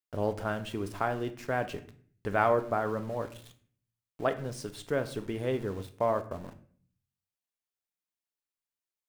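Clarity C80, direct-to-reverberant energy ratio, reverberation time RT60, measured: 18.0 dB, 8.0 dB, 0.50 s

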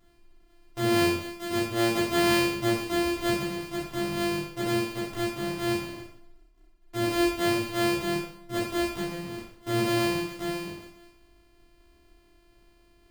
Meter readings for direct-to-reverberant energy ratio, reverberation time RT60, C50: −7.0 dB, 0.65 s, 2.0 dB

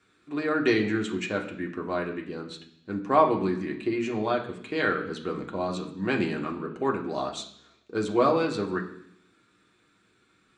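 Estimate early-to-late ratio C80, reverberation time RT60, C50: 12.5 dB, 0.70 s, 10.0 dB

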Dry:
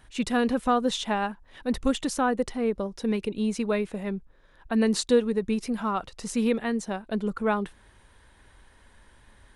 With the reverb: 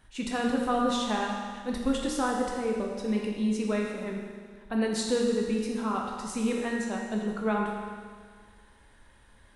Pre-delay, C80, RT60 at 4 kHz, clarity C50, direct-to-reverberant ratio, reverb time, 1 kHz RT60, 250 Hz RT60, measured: 13 ms, 3.0 dB, 1.8 s, 1.5 dB, −1.0 dB, 1.8 s, 1.8 s, 1.8 s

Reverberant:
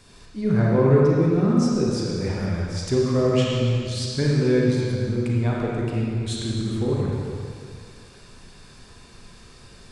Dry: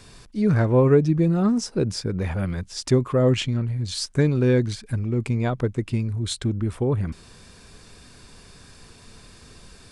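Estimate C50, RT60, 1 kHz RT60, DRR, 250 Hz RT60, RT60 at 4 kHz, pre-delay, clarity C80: −3.0 dB, 2.2 s, 2.3 s, −4.5 dB, 2.2 s, 2.1 s, 31 ms, −0.5 dB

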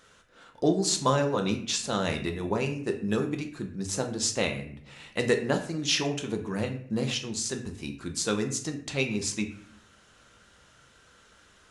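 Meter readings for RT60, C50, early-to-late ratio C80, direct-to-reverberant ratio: 0.60 s, 10.0 dB, 13.5 dB, 4.0 dB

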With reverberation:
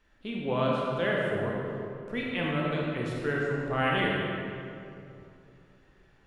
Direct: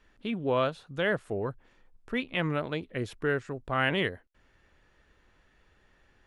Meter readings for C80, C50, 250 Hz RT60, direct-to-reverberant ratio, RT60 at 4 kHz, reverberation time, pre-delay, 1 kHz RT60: −0.5 dB, −2.0 dB, 3.2 s, −3.5 dB, 1.6 s, 2.7 s, 27 ms, 2.5 s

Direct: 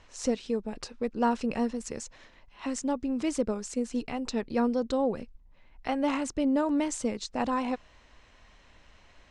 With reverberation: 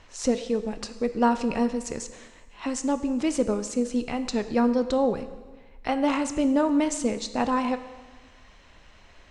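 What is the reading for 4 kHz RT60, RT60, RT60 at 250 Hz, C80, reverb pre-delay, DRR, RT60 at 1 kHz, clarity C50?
1.2 s, 1.3 s, 1.3 s, 13.5 dB, 7 ms, 10.0 dB, 1.3 s, 12.0 dB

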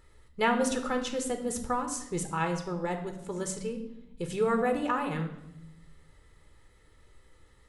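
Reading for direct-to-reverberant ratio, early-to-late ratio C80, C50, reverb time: 5.5 dB, 12.0 dB, 9.0 dB, 0.85 s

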